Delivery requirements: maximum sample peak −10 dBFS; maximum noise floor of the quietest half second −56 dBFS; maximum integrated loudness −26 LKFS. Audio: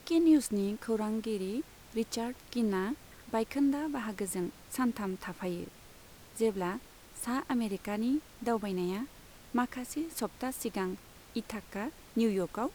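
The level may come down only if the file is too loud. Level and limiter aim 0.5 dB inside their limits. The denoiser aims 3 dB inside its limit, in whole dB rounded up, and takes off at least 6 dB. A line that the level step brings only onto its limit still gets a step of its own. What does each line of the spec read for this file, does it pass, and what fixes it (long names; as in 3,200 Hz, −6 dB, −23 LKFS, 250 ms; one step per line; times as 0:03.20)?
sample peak −16.0 dBFS: in spec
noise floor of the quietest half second −54 dBFS: out of spec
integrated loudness −34.0 LKFS: in spec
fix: broadband denoise 6 dB, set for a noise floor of −54 dBFS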